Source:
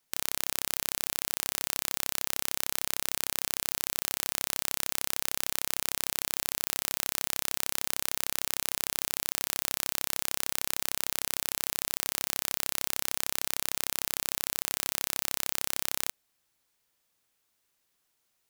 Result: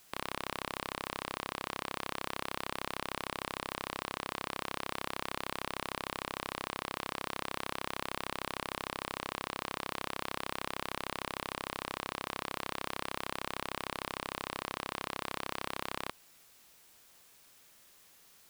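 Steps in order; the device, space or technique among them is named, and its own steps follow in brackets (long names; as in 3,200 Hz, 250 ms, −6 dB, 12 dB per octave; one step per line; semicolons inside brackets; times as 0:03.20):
drive-through speaker (band-pass filter 350–3,800 Hz; parametric band 1,100 Hz +5 dB 0.33 octaves; hard clipping −27.5 dBFS, distortion −4 dB; white noise bed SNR 20 dB)
level +4.5 dB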